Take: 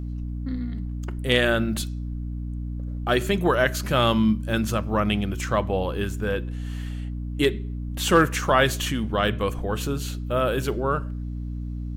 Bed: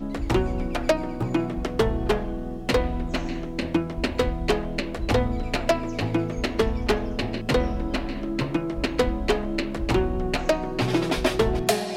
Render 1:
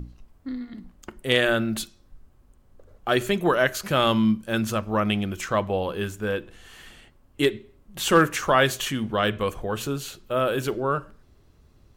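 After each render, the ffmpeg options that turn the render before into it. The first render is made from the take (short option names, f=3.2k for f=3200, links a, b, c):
-af "bandreject=f=60:t=h:w=6,bandreject=f=120:t=h:w=6,bandreject=f=180:t=h:w=6,bandreject=f=240:t=h:w=6,bandreject=f=300:t=h:w=6"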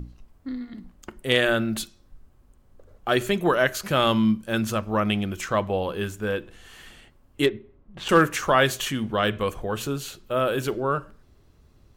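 -filter_complex "[0:a]asettb=1/sr,asplit=3[a][b][c];[a]atrim=end=7.464[d];[b]atrim=start=7.46:end=8.09,asetpts=PTS-STARTPTS,afade=t=in:d=0.004:c=qsin,afade=t=out:st=0.626:d=0.004:c=qsin,adynamicsmooth=sensitivity=1:basefreq=2.2k[e];[c]atrim=start=8.086[f];[d][e]acrossfade=d=0.004:c1=hsin:c2=qsin[g];[g][f]acrossfade=d=0.004:c1=qsin:c2=hsin"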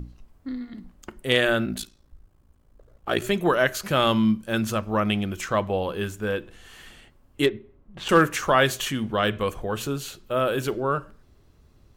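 -filter_complex "[0:a]asplit=3[a][b][c];[a]afade=t=out:st=1.65:d=0.02[d];[b]aeval=exprs='val(0)*sin(2*PI*28*n/s)':c=same,afade=t=in:st=1.65:d=0.02,afade=t=out:st=3.22:d=0.02[e];[c]afade=t=in:st=3.22:d=0.02[f];[d][e][f]amix=inputs=3:normalize=0"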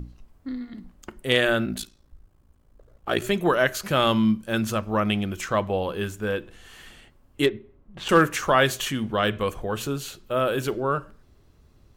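-af anull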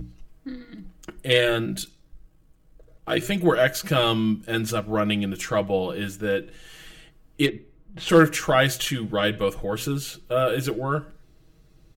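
-af "equalizer=f=1k:w=1.8:g=-6.5,aecho=1:1:6.3:0.79"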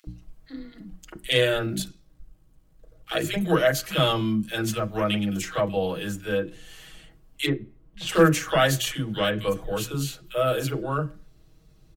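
-filter_complex "[0:a]acrossover=split=360|1800[a][b][c];[b]adelay=40[d];[a]adelay=70[e];[e][d][c]amix=inputs=3:normalize=0"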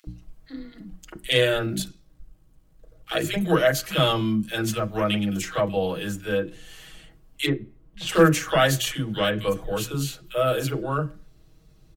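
-af "volume=1dB"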